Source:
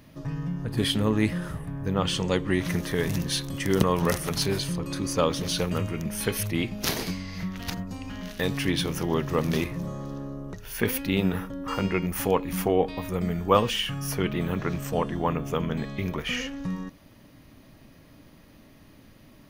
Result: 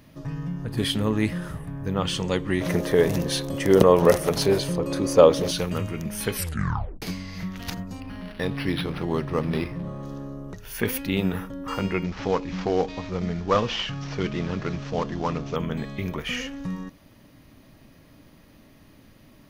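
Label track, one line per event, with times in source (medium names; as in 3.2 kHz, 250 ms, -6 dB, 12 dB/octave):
2.610000	5.510000	peaking EQ 530 Hz +12 dB 1.5 oct
6.340000	6.340000	tape stop 0.68 s
8.000000	10.030000	decimation joined by straight lines rate divided by 6×
12.040000	15.560000	CVSD coder 32 kbps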